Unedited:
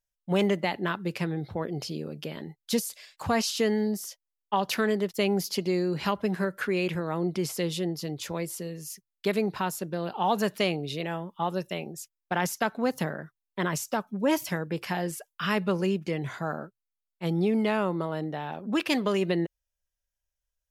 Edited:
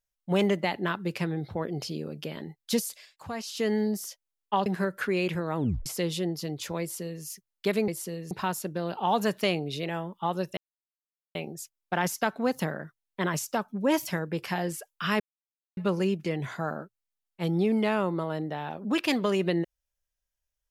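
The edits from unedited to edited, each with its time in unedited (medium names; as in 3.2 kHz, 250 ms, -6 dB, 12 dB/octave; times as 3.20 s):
2.91–3.75 s: dip -10 dB, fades 0.29 s
4.66–6.26 s: delete
7.17 s: tape stop 0.29 s
8.41–8.84 s: copy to 9.48 s
11.74 s: insert silence 0.78 s
15.59 s: insert silence 0.57 s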